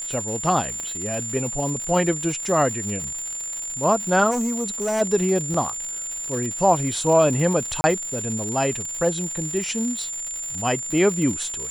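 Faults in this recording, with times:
crackle 180 per s -28 dBFS
whine 7.2 kHz -28 dBFS
0.80 s: pop -18 dBFS
4.30–5.02 s: clipped -20 dBFS
5.54 s: dropout 3.9 ms
7.81–7.84 s: dropout 30 ms

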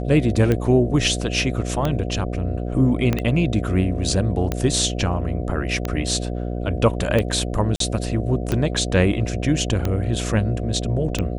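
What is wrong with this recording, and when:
buzz 60 Hz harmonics 12 -26 dBFS
tick 45 rpm -9 dBFS
3.13 s: pop -8 dBFS
7.76–7.80 s: dropout 43 ms

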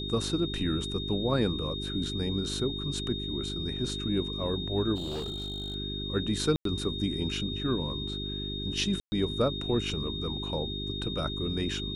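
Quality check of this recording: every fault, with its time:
hum 50 Hz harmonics 8 -37 dBFS
whine 3.7 kHz -36 dBFS
4.95–5.76 s: clipped -31 dBFS
6.56–6.65 s: dropout 93 ms
9.00–9.12 s: dropout 120 ms

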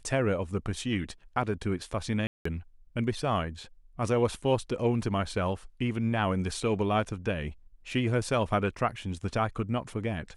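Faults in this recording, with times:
2.27–2.45 s: dropout 184 ms

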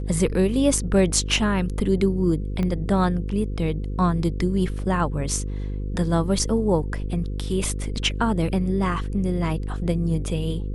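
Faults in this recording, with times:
buzz 50 Hz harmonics 10 -28 dBFS
2.63 s: pop -16 dBFS

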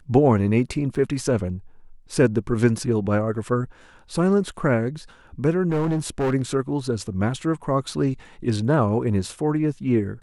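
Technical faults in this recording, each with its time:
0.95–0.96 s: dropout 5.7 ms
5.69–6.34 s: clipped -19 dBFS

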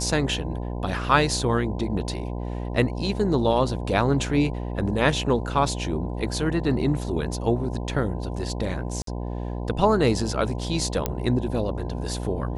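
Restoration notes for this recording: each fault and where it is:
buzz 60 Hz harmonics 17 -30 dBFS
9.02–9.07 s: dropout 53 ms
11.06 s: pop -9 dBFS

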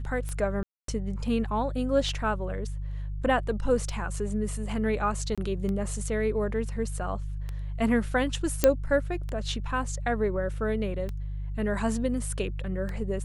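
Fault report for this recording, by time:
hum 50 Hz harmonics 3 -33 dBFS
tick 33 1/3 rpm -22 dBFS
0.63–0.88 s: dropout 253 ms
5.35–5.38 s: dropout 26 ms
8.64 s: pop -5 dBFS

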